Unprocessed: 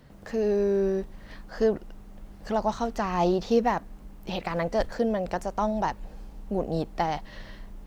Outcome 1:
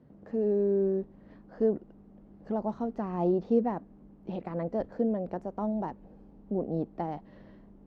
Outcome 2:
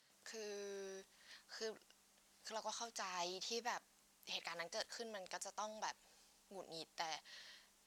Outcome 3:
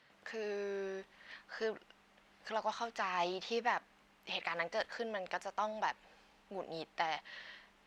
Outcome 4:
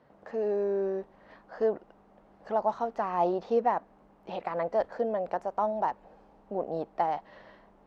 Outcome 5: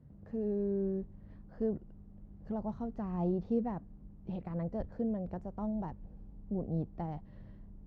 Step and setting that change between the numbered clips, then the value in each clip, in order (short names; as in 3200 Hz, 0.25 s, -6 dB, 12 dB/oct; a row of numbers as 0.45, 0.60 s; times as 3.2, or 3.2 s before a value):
band-pass, frequency: 270, 7100, 2500, 740, 110 Hz